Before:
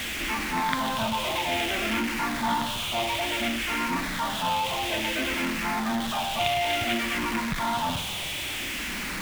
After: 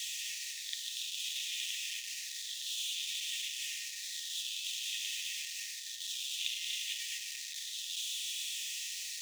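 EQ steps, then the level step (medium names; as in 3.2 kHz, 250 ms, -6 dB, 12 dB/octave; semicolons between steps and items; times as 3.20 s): rippled Chebyshev high-pass 1.8 kHz, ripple 9 dB; resonant high shelf 2.9 kHz +7.5 dB, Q 3; -7.5 dB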